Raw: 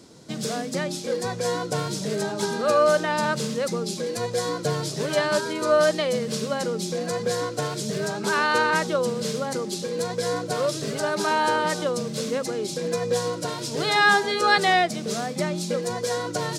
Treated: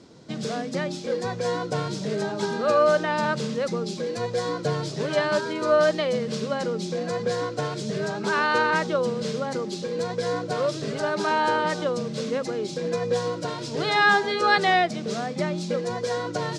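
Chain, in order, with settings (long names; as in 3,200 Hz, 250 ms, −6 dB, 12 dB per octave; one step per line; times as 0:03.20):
high-frequency loss of the air 96 metres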